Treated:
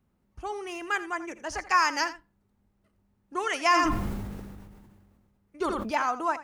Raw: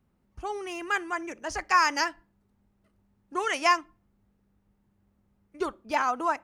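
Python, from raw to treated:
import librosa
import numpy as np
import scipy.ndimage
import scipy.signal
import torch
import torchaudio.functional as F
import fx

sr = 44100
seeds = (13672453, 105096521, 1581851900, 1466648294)

y = x + 10.0 ** (-15.0 / 20.0) * np.pad(x, (int(83 * sr / 1000.0), 0))[:len(x)]
y = fx.sustainer(y, sr, db_per_s=30.0, at=(3.62, 5.93))
y = y * librosa.db_to_amplitude(-1.0)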